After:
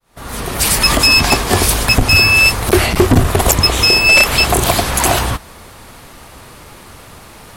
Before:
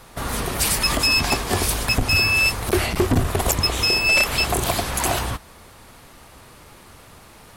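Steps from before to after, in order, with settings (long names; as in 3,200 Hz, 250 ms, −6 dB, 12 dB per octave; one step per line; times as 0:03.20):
fade in at the beginning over 0.83 s
level +8.5 dB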